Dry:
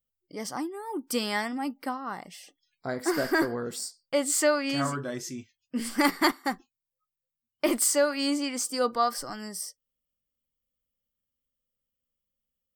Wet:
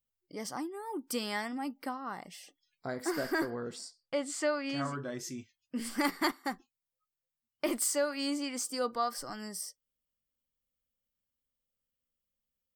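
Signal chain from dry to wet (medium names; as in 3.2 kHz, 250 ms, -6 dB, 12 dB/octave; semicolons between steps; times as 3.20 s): in parallel at -1 dB: compression, threshold -34 dBFS, peak gain reduction 15.5 dB; 3.50–5.19 s: on the sum: distance through air 70 m; trim -8.5 dB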